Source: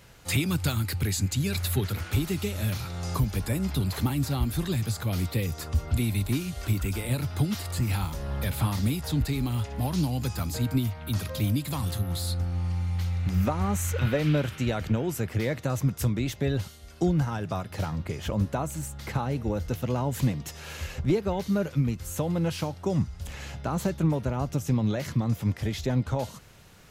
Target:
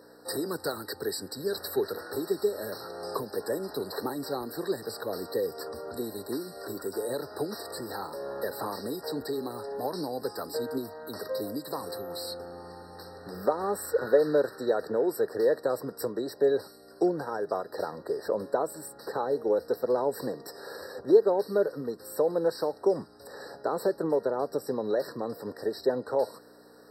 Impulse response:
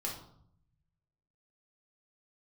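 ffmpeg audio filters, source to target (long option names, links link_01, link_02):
-af "aeval=exprs='val(0)+0.00794*(sin(2*PI*60*n/s)+sin(2*PI*2*60*n/s)/2+sin(2*PI*3*60*n/s)/3+sin(2*PI*4*60*n/s)/4+sin(2*PI*5*60*n/s)/5)':channel_layout=same,highpass=frequency=440:width_type=q:width=3.9,afftfilt=real='re*eq(mod(floor(b*sr/1024/1900),2),0)':imag='im*eq(mod(floor(b*sr/1024/1900),2),0)':win_size=1024:overlap=0.75,volume=-1.5dB"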